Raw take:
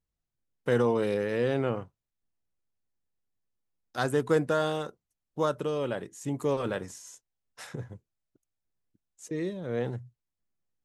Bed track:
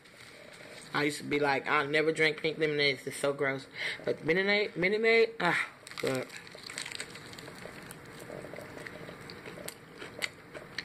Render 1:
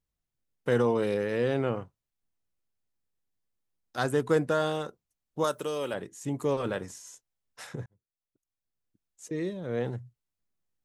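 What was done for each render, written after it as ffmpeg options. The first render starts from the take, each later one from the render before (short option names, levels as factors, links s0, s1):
-filter_complex "[0:a]asettb=1/sr,asplit=3[s0][s1][s2];[s0]atrim=end=5.444[s3];[s1]atrim=start=5.44:end=5.94,asetpts=PTS-STARTPTS,afade=t=in:d=0.004:c=qsin,afade=t=out:st=0.496:d=0.004:c=qsin,aemphasis=mode=production:type=bsi[s4];[s2]atrim=start=5.936[s5];[s3][s4]acrossfade=d=0.004:c1=hsin:c2=qsin[s6];[s6][s5]acrossfade=d=0.004:c1=qsin:c2=hsin,asplit=2[s7][s8];[s7]atrim=end=7.86,asetpts=PTS-STARTPTS,afade=t=out:st=7.856:d=0.004:c=hsin[s9];[s8]atrim=start=7.86,asetpts=PTS-STARTPTS,afade=t=in:d=1.4[s10];[s9][s10]concat=n=2:v=0:a=1"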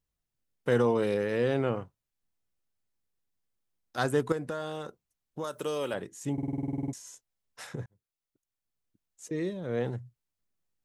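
-filter_complex "[0:a]asettb=1/sr,asplit=3[s0][s1][s2];[s0]atrim=end=4.324[s3];[s1]atrim=start=4.32:end=5.58,asetpts=PTS-STARTPTS,afade=t=in:d=0.004:c=qsin,afade=t=out:st=1.256:d=0.004:c=qsin,acompressor=threshold=0.02:ratio=2.5:attack=3.2:release=140:knee=1:detection=peak[s4];[s2]atrim=start=5.576[s5];[s3][s4]acrossfade=d=0.004:c1=hsin:c2=qsin[s6];[s6][s5]acrossfade=d=0.004:c1=qsin:c2=hsin,asplit=13[s7][s8][s9][s10][s11][s12][s13][s14][s15][s16][s17][s18][s19];[s7]atrim=end=6.382[s20];[s8]atrim=start=6.328:end=6.382[s21];[s9]atrim=start=6.328:end=6.382[s22];[s10]atrim=start=6.328:end=6.382[s23];[s11]atrim=start=6.328:end=6.382[s24];[s12]atrim=start=6.328:end=6.382[s25];[s13]atrim=start=6.328:end=6.382[s26];[s14]atrim=start=6.328:end=6.382[s27];[s15]atrim=start=6.328:end=6.382[s28];[s16]atrim=start=6.328:end=6.382[s29];[s17]atrim=start=6.328:end=6.382[s30];[s18]atrim=start=6.328:end=6.382[s31];[s19]atrim=start=6.928[s32];[s20][s21]acrossfade=d=0.004:c1=hsin:c2=hsin[s33];[s33][s22]acrossfade=d=0.004:c1=hsin:c2=hsin[s34];[s34][s23]acrossfade=d=0.004:c1=hsin:c2=hsin[s35];[s35][s24]acrossfade=d=0.004:c1=hsin:c2=hsin[s36];[s36][s25]acrossfade=d=0.004:c1=hsin:c2=hsin[s37];[s37][s26]acrossfade=d=0.004:c1=hsin:c2=hsin[s38];[s38][s27]acrossfade=d=0.004:c1=hsin:c2=hsin[s39];[s39][s28]acrossfade=d=0.004:c1=hsin:c2=hsin[s40];[s40][s29]acrossfade=d=0.004:c1=hsin:c2=hsin[s41];[s41][s30]acrossfade=d=0.004:c1=hsin:c2=hsin[s42];[s42][s31]acrossfade=d=0.004:c1=hsin:c2=hsin[s43];[s43][s32]acrossfade=d=0.004:c1=hsin:c2=hsin"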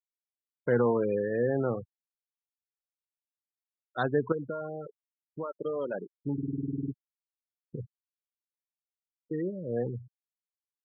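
-af "highpass=85,afftfilt=real='re*gte(hypot(re,im),0.0398)':imag='im*gte(hypot(re,im),0.0398)':win_size=1024:overlap=0.75"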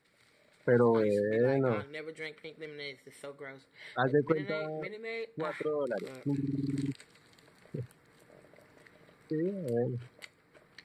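-filter_complex "[1:a]volume=0.188[s0];[0:a][s0]amix=inputs=2:normalize=0"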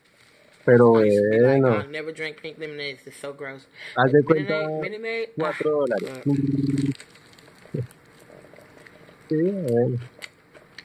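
-af "volume=3.35"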